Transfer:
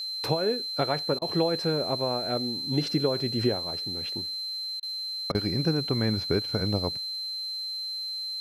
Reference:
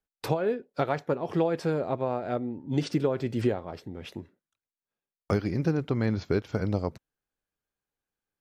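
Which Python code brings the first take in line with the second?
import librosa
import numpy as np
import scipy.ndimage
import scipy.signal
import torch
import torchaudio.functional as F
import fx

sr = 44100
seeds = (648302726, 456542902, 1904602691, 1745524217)

y = fx.notch(x, sr, hz=4100.0, q=30.0)
y = fx.fix_interpolate(y, sr, at_s=(1.19, 4.8, 5.32), length_ms=26.0)
y = fx.noise_reduce(y, sr, print_start_s=4.51, print_end_s=5.01, reduce_db=30.0)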